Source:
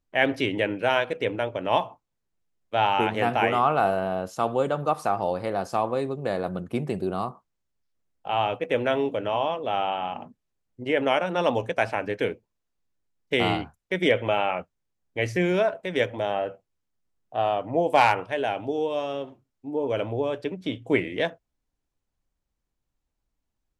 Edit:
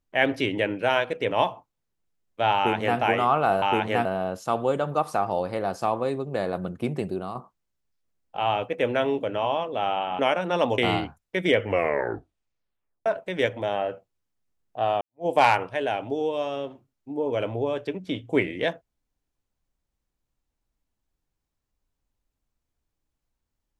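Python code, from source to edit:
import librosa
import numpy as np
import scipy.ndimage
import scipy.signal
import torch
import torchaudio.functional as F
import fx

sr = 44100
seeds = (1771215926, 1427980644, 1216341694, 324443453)

y = fx.edit(x, sr, fx.cut(start_s=1.31, length_s=0.34),
    fx.duplicate(start_s=2.89, length_s=0.43, to_s=3.96),
    fx.fade_out_to(start_s=6.93, length_s=0.33, floor_db=-7.5),
    fx.cut(start_s=10.1, length_s=0.94),
    fx.cut(start_s=11.63, length_s=1.72),
    fx.tape_stop(start_s=14.11, length_s=1.52),
    fx.fade_in_span(start_s=17.58, length_s=0.25, curve='exp'), tone=tone)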